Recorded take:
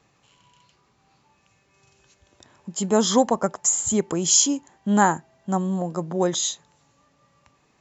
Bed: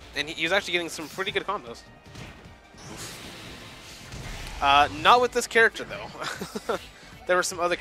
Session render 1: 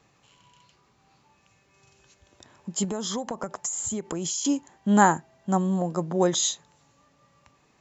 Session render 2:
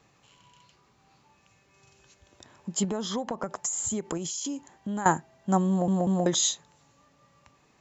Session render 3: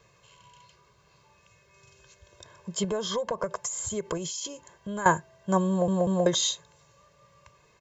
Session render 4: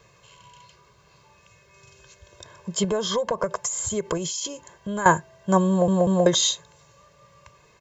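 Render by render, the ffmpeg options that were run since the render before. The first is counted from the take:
-filter_complex "[0:a]asettb=1/sr,asplit=3[a][b][c];[a]atrim=end=2.844[d];[b]atrim=start=2.84:end=4.45,asetpts=PTS-STARTPTS,afade=t=in:d=0.004:c=qsin,afade=t=out:st=1.606:d=0.004:c=qsin,acompressor=threshold=-26dB:ratio=16:attack=3.2:release=140:knee=1:detection=peak[e];[c]atrim=start=4.446[f];[d][e]acrossfade=d=0.004:c1=hsin:c2=qsin[g];[g][f]acrossfade=d=0.004:c1=qsin:c2=hsin"
-filter_complex "[0:a]asettb=1/sr,asplit=3[a][b][c];[a]atrim=end=2.804[d];[b]atrim=start=2.8:end=3.48,asetpts=PTS-STARTPTS,afade=t=in:d=0.004:c=qsin,afade=t=out:st=0.676:d=0.004:c=qsin,lowpass=4.9k[e];[c]atrim=start=3.476[f];[d][e]acrossfade=d=0.004:c1=hsin:c2=qsin[g];[g][f]acrossfade=d=0.004:c1=qsin:c2=hsin,asettb=1/sr,asplit=3[h][i][j];[h]atrim=end=4.174[k];[i]atrim=start=4.17:end=5.06,asetpts=PTS-STARTPTS,afade=t=in:d=0.004:c=qsin,afade=t=out:st=0.886:d=0.004:c=qsin,acompressor=threshold=-30dB:ratio=6:attack=3.2:release=140:knee=1:detection=peak[l];[j]atrim=start=5.056[m];[k][l]acrossfade=d=0.004:c1=hsin:c2=qsin[n];[n][m]acrossfade=d=0.004:c1=qsin:c2=hsin,asplit=4[o][p][q][r];[o]atrim=end=5.882[s];[p]atrim=start=5.688:end=5.882[t];[q]atrim=start=5.688:end=5.882[u];[r]atrim=start=6.258[v];[s][t]acrossfade=d=0.004:c1=hsin:c2=hsin[w];[w][u]acrossfade=d=0.004:c1=hsin:c2=hsin[x];[x][v]acrossfade=d=0.004:c1=hsin:c2=hsin"
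-filter_complex "[0:a]acrossover=split=6000[a][b];[b]acompressor=threshold=-43dB:ratio=4:attack=1:release=60[c];[a][c]amix=inputs=2:normalize=0,aecho=1:1:1.9:0.87"
-af "volume=5dB,alimiter=limit=-3dB:level=0:latency=1"

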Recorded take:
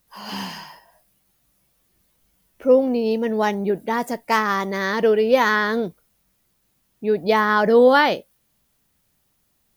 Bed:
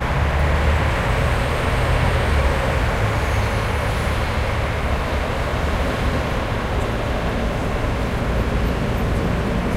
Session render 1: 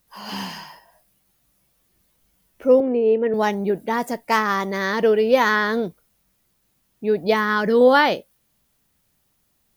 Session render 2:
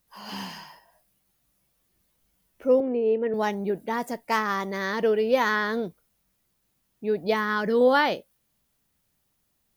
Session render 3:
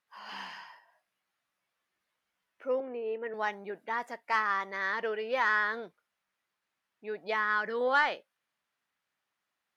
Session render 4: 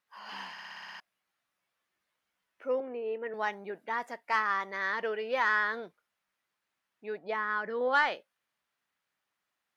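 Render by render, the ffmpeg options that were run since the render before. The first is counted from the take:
-filter_complex "[0:a]asettb=1/sr,asplit=3[a][b][c];[a]atrim=end=2.804[d];[b]atrim=start=2.8:end=3.34,asetpts=PTS-STARTPTS,afade=t=in:d=0.004:c=qsin,afade=t=out:st=0.536:d=0.004:c=qsin,highpass=170,equalizer=f=190:t=q:w=4:g=-8,equalizer=f=400:t=q:w=4:g=10,equalizer=f=840:t=q:w=4:g=-7,lowpass=f=2.5k:w=0.5412,lowpass=f=2.5k:w=1.3066[e];[c]atrim=start=3.336[f];[d][e]acrossfade=d=0.004:c1=hsin:c2=qsin[g];[g][f]acrossfade=d=0.004:c1=qsin:c2=hsin,asettb=1/sr,asplit=3[h][i][j];[h]atrim=end=7.344[k];[i]atrim=start=7.34:end=7.81,asetpts=PTS-STARTPTS,afade=t=in:d=0.004:c=qsin,afade=t=out:st=0.466:d=0.004:c=qsin,equalizer=f=720:t=o:w=0.77:g=-11[l];[j]atrim=start=7.806[m];[k][l]acrossfade=d=0.004:c1=hsin:c2=qsin[n];[n][m]acrossfade=d=0.004:c1=qsin:c2=hsin"
-af "volume=-5.5dB"
-af "bandpass=f=1.6k:t=q:w=1.1:csg=0,asoftclip=type=tanh:threshold=-14.5dB"
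-filter_complex "[0:a]asplit=3[a][b][c];[a]afade=t=out:st=7.17:d=0.02[d];[b]highshelf=f=2.2k:g=-10.5,afade=t=in:st=7.17:d=0.02,afade=t=out:st=7.92:d=0.02[e];[c]afade=t=in:st=7.92:d=0.02[f];[d][e][f]amix=inputs=3:normalize=0,asplit=9[g][h][i][j][k][l][m][n][o];[g]atrim=end=0.582[p];[h]atrim=start=0.518:end=0.582[q];[i]atrim=start=0.518:end=0.582[r];[j]atrim=start=0.518:end=0.582[s];[k]atrim=start=0.518:end=0.582[t];[l]atrim=start=0.518:end=0.582[u];[m]atrim=start=0.518:end=0.582[v];[n]atrim=start=0.518:end=0.582[w];[o]atrim=start=0.998[x];[p][q]acrossfade=d=0.004:c1=hsin:c2=hsin[y];[y][r]acrossfade=d=0.004:c1=hsin:c2=hsin[z];[z][s]acrossfade=d=0.004:c1=hsin:c2=hsin[aa];[aa][t]acrossfade=d=0.004:c1=hsin:c2=hsin[ab];[ab][u]acrossfade=d=0.004:c1=hsin:c2=hsin[ac];[ac][v]acrossfade=d=0.004:c1=hsin:c2=hsin[ad];[ad][w]acrossfade=d=0.004:c1=hsin:c2=hsin[ae];[ae][x]acrossfade=d=0.004:c1=hsin:c2=hsin"

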